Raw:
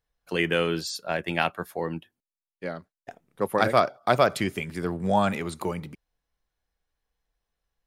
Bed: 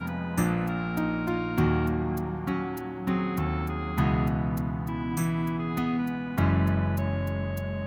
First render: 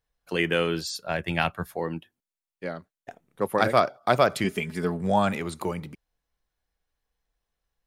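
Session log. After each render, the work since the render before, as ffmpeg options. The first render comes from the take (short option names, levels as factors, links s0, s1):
-filter_complex "[0:a]asettb=1/sr,asplit=3[s0][s1][s2];[s0]atrim=end=0.644[s3];[s1]atrim=start=0.64:end=1.76,asetpts=PTS-STARTPTS,afade=t=in:d=0.004:c=qsin,afade=t=out:st=1.116:d=0.004:c=qsin,asubboost=boost=12:cutoff=150[s4];[s2]atrim=start=1.756[s5];[s3][s4]acrossfade=d=0.004:c1=hsin:c2=qsin[s6];[s6][s5]acrossfade=d=0.004:c1=qsin:c2=hsin,asettb=1/sr,asplit=3[s7][s8][s9];[s7]atrim=end=2.704[s10];[s8]atrim=start=2.7:end=3.44,asetpts=PTS-STARTPTS,afade=t=in:d=0.004:c=qsin,afade=t=out:st=0.736:d=0.004:c=qsin,bandreject=f=5000:w=12[s11];[s9]atrim=start=3.436[s12];[s10][s11]acrossfade=d=0.004:c1=hsin:c2=qsin[s13];[s13][s12]acrossfade=d=0.004:c1=qsin:c2=hsin,asettb=1/sr,asplit=3[s14][s15][s16];[s14]atrim=end=4.444[s17];[s15]atrim=start=4.44:end=5.01,asetpts=PTS-STARTPTS,afade=t=in:d=0.004:c=qsin,afade=t=out:st=0.566:d=0.004:c=qsin,aecho=1:1:4.7:0.65,atrim=end_sample=25137[s18];[s16]atrim=start=5.006[s19];[s17][s18]acrossfade=d=0.004:c1=hsin:c2=qsin[s20];[s20][s19]acrossfade=d=0.004:c1=qsin:c2=hsin"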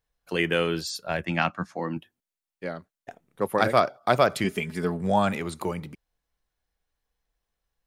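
-filter_complex "[0:a]asettb=1/sr,asplit=3[s0][s1][s2];[s0]atrim=end=1.254[s3];[s1]atrim=start=1.25:end=1.97,asetpts=PTS-STARTPTS,afade=t=in:d=0.004:c=qsin,afade=t=out:st=0.716:d=0.004:c=qsin,highpass=140,equalizer=f=200:t=q:w=4:g=6,equalizer=f=290:t=q:w=4:g=8,equalizer=f=410:t=q:w=4:g=-9,equalizer=f=1200:t=q:w=4:g=4,equalizer=f=3500:t=q:w=4:g=-6,equalizer=f=6000:t=q:w=4:g=7,lowpass=f=7200:w=0.5412,lowpass=f=7200:w=1.3066[s4];[s2]atrim=start=1.966[s5];[s3][s4]acrossfade=d=0.004:c1=hsin:c2=qsin[s6];[s6][s5]acrossfade=d=0.004:c1=qsin:c2=hsin"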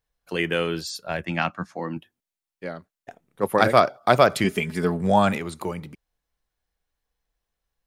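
-filter_complex "[0:a]asplit=3[s0][s1][s2];[s0]atrim=end=3.432[s3];[s1]atrim=start=3.428:end=5.382,asetpts=PTS-STARTPTS,volume=1.58[s4];[s2]atrim=start=5.378[s5];[s3][s4]acrossfade=d=0.004:c1=hsin:c2=hsin[s6];[s6][s5]acrossfade=d=0.004:c1=hsin:c2=hsin"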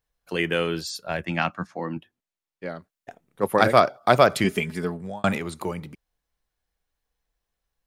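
-filter_complex "[0:a]asettb=1/sr,asplit=3[s0][s1][s2];[s0]atrim=end=1.674[s3];[s1]atrim=start=1.67:end=2.69,asetpts=PTS-STARTPTS,afade=t=in:d=0.004:c=qsin,afade=t=out:st=1.016:d=0.004:c=qsin,highshelf=f=7000:g=-9.5[s4];[s2]atrim=start=2.686[s5];[s3][s4]acrossfade=d=0.004:c1=hsin:c2=qsin[s6];[s6][s5]acrossfade=d=0.004:c1=qsin:c2=hsin,asplit=2[s7][s8];[s7]atrim=end=5.24,asetpts=PTS-STARTPTS,afade=t=out:st=4.58:d=0.66[s9];[s8]atrim=start=5.24,asetpts=PTS-STARTPTS,afade=t=in:d=0.004:c=hsin[s10];[s9][s10]concat=n=2:v=0:a=1"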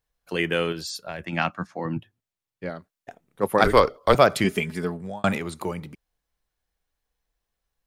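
-filter_complex "[0:a]asettb=1/sr,asplit=3[s0][s1][s2];[s0]atrim=end=0.724[s3];[s1]atrim=start=0.72:end=1.33,asetpts=PTS-STARTPTS,afade=t=in:d=0.004:c=qsin,afade=t=out:st=0.606:d=0.004:c=qsin,acompressor=threshold=0.0398:ratio=6:attack=3.2:release=140:knee=1:detection=peak[s4];[s2]atrim=start=1.326[s5];[s3][s4]acrossfade=d=0.004:c1=hsin:c2=qsin[s6];[s6][s5]acrossfade=d=0.004:c1=qsin:c2=hsin,asettb=1/sr,asplit=3[s7][s8][s9];[s7]atrim=end=1.854[s10];[s8]atrim=start=1.85:end=2.7,asetpts=PTS-STARTPTS,afade=t=in:d=0.004:c=qsin,afade=t=out:st=0.846:d=0.004:c=qsin,equalizer=f=110:t=o:w=0.8:g=14.5[s11];[s9]atrim=start=2.696[s12];[s10][s11]acrossfade=d=0.004:c1=hsin:c2=qsin[s13];[s13][s12]acrossfade=d=0.004:c1=qsin:c2=hsin,asettb=1/sr,asplit=3[s14][s15][s16];[s14]atrim=end=3.644[s17];[s15]atrim=start=3.64:end=4.15,asetpts=PTS-STARTPTS,afade=t=in:d=0.004:c=qsin,afade=t=out:st=0.506:d=0.004:c=qsin,afreqshift=-140[s18];[s16]atrim=start=4.146[s19];[s17][s18]acrossfade=d=0.004:c1=hsin:c2=qsin[s20];[s20][s19]acrossfade=d=0.004:c1=qsin:c2=hsin"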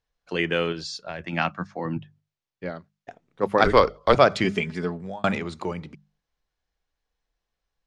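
-af "lowpass=f=6500:w=0.5412,lowpass=f=6500:w=1.3066,bandreject=f=50:t=h:w=6,bandreject=f=100:t=h:w=6,bandreject=f=150:t=h:w=6,bandreject=f=200:t=h:w=6"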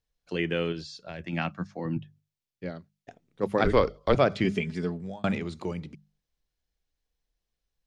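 -filter_complex "[0:a]acrossover=split=3300[s0][s1];[s1]acompressor=threshold=0.00562:ratio=4:attack=1:release=60[s2];[s0][s2]amix=inputs=2:normalize=0,equalizer=f=1100:w=0.59:g=-9"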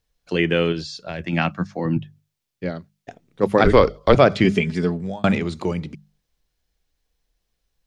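-af "volume=2.82,alimiter=limit=0.891:level=0:latency=1"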